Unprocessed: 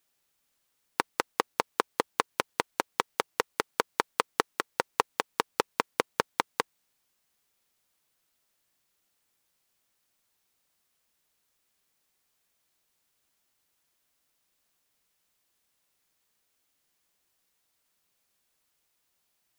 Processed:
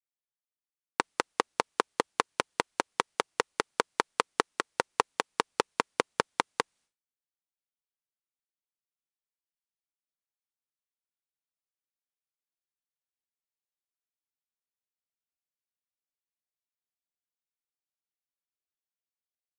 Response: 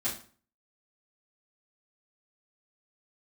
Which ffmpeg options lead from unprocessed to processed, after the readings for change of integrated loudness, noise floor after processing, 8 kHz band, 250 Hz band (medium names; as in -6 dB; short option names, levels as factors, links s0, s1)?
0.0 dB, under -85 dBFS, -0.5 dB, 0.0 dB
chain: -af "agate=range=0.0224:threshold=0.00112:ratio=3:detection=peak,aresample=22050,aresample=44100"